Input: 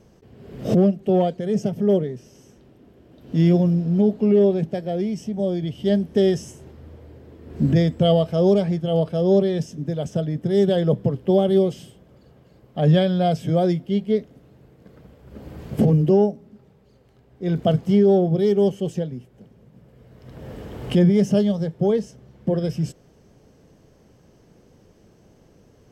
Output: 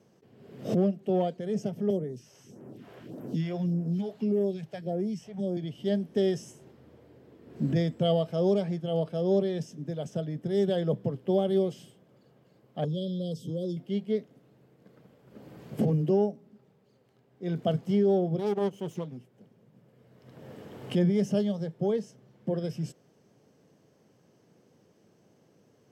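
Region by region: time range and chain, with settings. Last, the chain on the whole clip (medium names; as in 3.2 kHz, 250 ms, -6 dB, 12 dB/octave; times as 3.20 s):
1.90–5.57 s: phase shifter stages 2, 1.7 Hz, lowest notch 220–3800 Hz + three bands compressed up and down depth 70%
12.84–13.77 s: Chebyshev band-stop 520–3300 Hz, order 4 + compression 3:1, threshold -21 dBFS
18.39–19.17 s: comb filter that takes the minimum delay 0.32 ms + transformer saturation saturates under 280 Hz
whole clip: high-pass 110 Hz 24 dB/octave; bass shelf 160 Hz -3 dB; trim -7.5 dB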